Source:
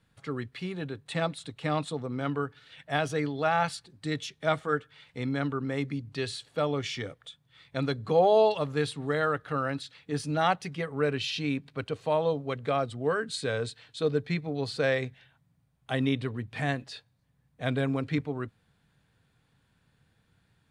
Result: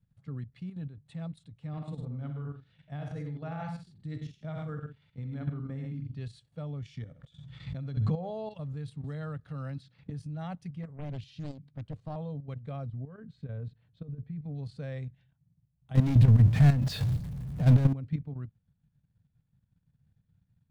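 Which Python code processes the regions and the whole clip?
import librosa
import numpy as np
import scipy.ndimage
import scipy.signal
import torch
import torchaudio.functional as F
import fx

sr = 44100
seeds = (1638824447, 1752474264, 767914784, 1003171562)

y = fx.chain(x, sr, fx.high_shelf(hz=7000.0, db=-9.5),
    fx.echo_multitap(ms=(62, 104, 149), db=(-5.5, -5.5, -11.5)), at=(1.67, 6.21))
y = fx.chain(y, sr, fx.lowpass(hz=8400.0, slope=24),
    fx.room_flutter(wall_m=11.0, rt60_s=0.27),
    fx.pre_swell(db_per_s=39.0), at=(6.97, 8.31))
y = fx.chain(y, sr, fx.peak_eq(hz=4900.0, db=6.0, octaves=0.61),
    fx.band_squash(depth_pct=100), at=(9.04, 10.1))
y = fx.chain(y, sr, fx.low_shelf(hz=110.0, db=2.5),
    fx.notch(hz=2600.0, q=15.0),
    fx.doppler_dist(depth_ms=0.89), at=(10.83, 12.16))
y = fx.chain(y, sr, fx.over_compress(threshold_db=-31.0, ratio=-1.0),
    fx.spacing_loss(db_at_10k=34), at=(12.86, 14.42))
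y = fx.chain(y, sr, fx.zero_step(step_db=-40.5),
    fx.leveller(passes=5),
    fx.sustainer(db_per_s=37.0), at=(15.95, 17.93))
y = fx.curve_eq(y, sr, hz=(170.0, 370.0, 550.0, 1300.0), db=(0, -19, -15, -20))
y = fx.level_steps(y, sr, step_db=10)
y = F.gain(torch.from_numpy(y), 3.5).numpy()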